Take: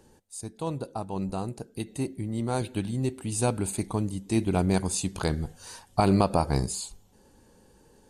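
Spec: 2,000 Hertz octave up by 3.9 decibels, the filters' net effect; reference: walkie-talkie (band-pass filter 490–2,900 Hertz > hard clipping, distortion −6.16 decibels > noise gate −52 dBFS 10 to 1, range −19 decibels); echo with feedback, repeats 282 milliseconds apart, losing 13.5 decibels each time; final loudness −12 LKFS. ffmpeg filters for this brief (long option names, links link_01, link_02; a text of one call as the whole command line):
ffmpeg -i in.wav -af "highpass=490,lowpass=2900,equalizer=frequency=2000:width_type=o:gain=6.5,aecho=1:1:282|564:0.211|0.0444,asoftclip=type=hard:threshold=-25dB,agate=range=-19dB:threshold=-52dB:ratio=10,volume=25dB" out.wav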